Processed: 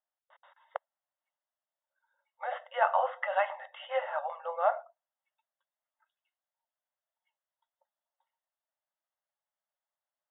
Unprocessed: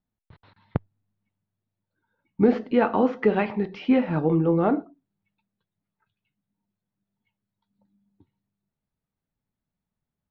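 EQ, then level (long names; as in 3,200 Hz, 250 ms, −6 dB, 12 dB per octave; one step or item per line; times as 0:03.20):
linear-phase brick-wall band-pass 520–3,800 Hz
Butterworth band-reject 2,400 Hz, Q 4.9
high-frequency loss of the air 170 metres
0.0 dB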